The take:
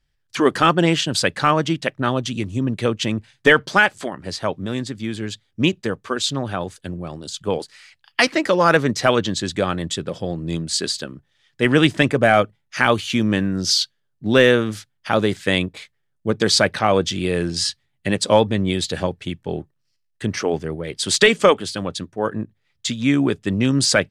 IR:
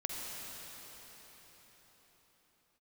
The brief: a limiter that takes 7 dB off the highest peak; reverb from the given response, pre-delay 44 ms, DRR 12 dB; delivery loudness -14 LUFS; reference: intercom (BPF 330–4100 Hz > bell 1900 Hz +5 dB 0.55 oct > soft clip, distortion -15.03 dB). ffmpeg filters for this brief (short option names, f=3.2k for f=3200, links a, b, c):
-filter_complex "[0:a]alimiter=limit=-9.5dB:level=0:latency=1,asplit=2[a][b];[1:a]atrim=start_sample=2205,adelay=44[c];[b][c]afir=irnorm=-1:irlink=0,volume=-15dB[d];[a][d]amix=inputs=2:normalize=0,highpass=330,lowpass=4.1k,equalizer=f=1.9k:t=o:w=0.55:g=5,asoftclip=threshold=-14.5dB,volume=12.5dB"